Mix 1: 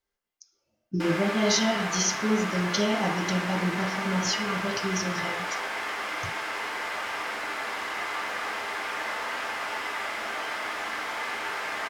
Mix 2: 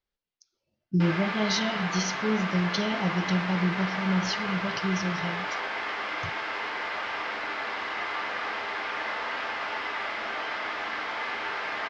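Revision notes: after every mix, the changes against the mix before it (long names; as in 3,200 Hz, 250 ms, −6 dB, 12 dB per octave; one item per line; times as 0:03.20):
speech: send off
master: add low-pass filter 4,900 Hz 24 dB per octave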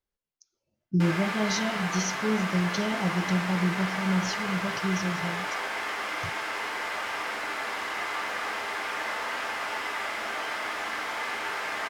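speech: add high-shelf EQ 2,100 Hz −7.5 dB
master: remove low-pass filter 4,900 Hz 24 dB per octave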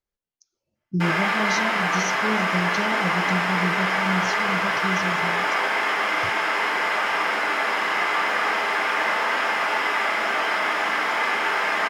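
background: send +10.0 dB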